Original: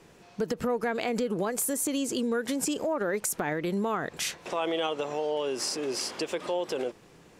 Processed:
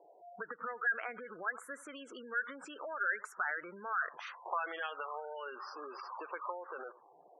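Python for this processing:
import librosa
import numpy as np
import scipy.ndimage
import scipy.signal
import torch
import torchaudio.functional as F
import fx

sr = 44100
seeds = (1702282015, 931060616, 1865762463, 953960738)

y = x + 10.0 ** (-18.5 / 20.0) * np.pad(x, (int(83 * sr / 1000.0), 0))[:len(x)]
y = fx.auto_wah(y, sr, base_hz=660.0, top_hz=1800.0, q=5.3, full_db=-23.5, direction='up')
y = fx.spec_gate(y, sr, threshold_db=-15, keep='strong')
y = y * librosa.db_to_amplitude(6.5)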